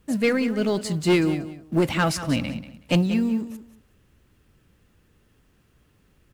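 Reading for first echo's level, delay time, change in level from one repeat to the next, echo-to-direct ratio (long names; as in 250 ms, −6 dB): −13.0 dB, 186 ms, −14.0 dB, −13.0 dB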